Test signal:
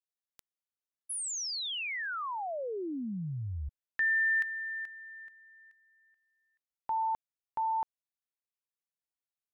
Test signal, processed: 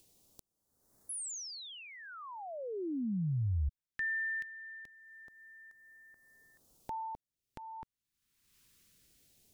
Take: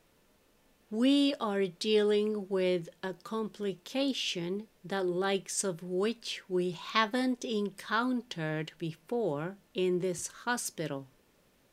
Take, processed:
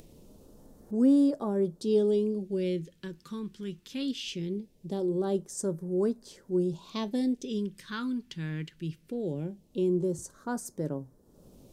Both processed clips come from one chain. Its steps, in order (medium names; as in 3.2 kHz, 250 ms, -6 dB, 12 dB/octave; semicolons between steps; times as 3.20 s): tilt shelf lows +4.5 dB, about 840 Hz; phase shifter stages 2, 0.21 Hz, lowest notch 620–2700 Hz; upward compressor, threshold -42 dBFS